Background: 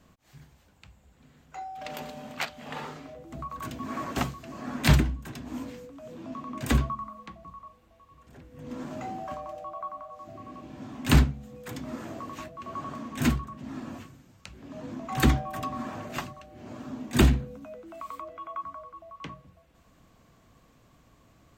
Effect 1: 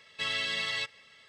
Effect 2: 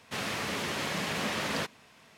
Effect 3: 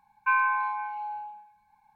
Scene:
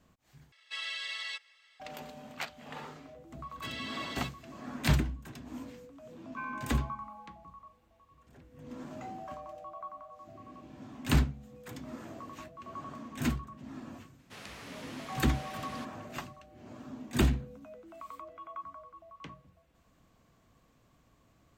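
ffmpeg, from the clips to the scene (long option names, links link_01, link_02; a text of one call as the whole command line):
ffmpeg -i bed.wav -i cue0.wav -i cue1.wav -i cue2.wav -filter_complex "[1:a]asplit=2[link_01][link_02];[0:a]volume=-6.5dB[link_03];[link_01]highpass=980[link_04];[link_03]asplit=2[link_05][link_06];[link_05]atrim=end=0.524[link_07];[link_04]atrim=end=1.28,asetpts=PTS-STARTPTS,volume=-6dB[link_08];[link_06]atrim=start=1.796[link_09];[link_02]atrim=end=1.28,asetpts=PTS-STARTPTS,volume=-10dB,afade=type=in:duration=0.004:curve=hsin,afade=type=out:start_time=1.276:duration=0.004:curve=hsin,adelay=3430[link_10];[3:a]atrim=end=1.95,asetpts=PTS-STARTPTS,volume=-17dB,afade=type=in:duration=0.004:curve=hsin,afade=type=out:start_time=1.946:duration=0.004:curve=hsin,adelay=269010S[link_11];[2:a]atrim=end=2.17,asetpts=PTS-STARTPTS,volume=-14dB,afade=type=in:duration=0.004:curve=hsin,afade=type=out:start_time=2.166:duration=0.004:curve=hsin,adelay=14190[link_12];[link_07][link_08]acrossfade=duration=0.004:curve1=hsin:curve2=hsin[link_13];[link_13][link_09]acrossfade=duration=0.004:curve1=hsin:curve2=hsin[link_14];[link_14][link_10][link_11][link_12]amix=inputs=4:normalize=0" out.wav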